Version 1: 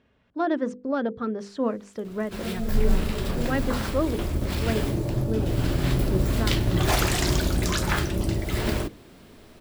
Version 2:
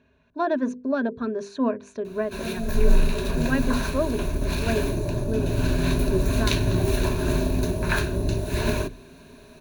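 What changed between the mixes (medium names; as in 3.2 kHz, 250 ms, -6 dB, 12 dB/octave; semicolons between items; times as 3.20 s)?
second sound: muted; master: add rippled EQ curve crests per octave 1.5, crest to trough 12 dB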